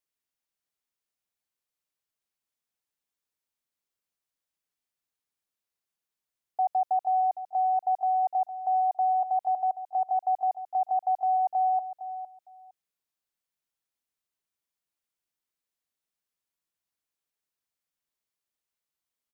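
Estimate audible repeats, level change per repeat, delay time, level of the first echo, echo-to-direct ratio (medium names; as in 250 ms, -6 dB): 2, -15.5 dB, 459 ms, -12.0 dB, -12.0 dB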